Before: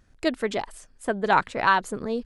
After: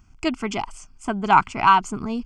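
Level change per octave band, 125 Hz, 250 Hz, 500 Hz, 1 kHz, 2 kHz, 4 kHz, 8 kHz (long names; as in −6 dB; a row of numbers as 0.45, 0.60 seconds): +5.5, +4.0, −3.5, +6.0, 0.0, +2.5, +3.5 decibels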